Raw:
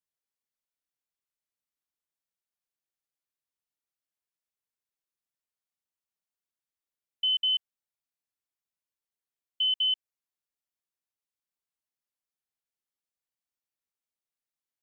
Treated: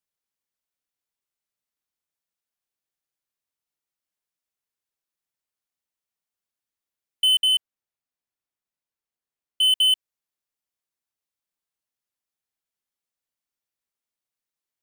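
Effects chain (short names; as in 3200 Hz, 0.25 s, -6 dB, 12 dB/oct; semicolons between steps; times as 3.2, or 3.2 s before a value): 7.39–9.63 high shelf 3000 Hz -5.5 dB; sample leveller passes 2; gain +6.5 dB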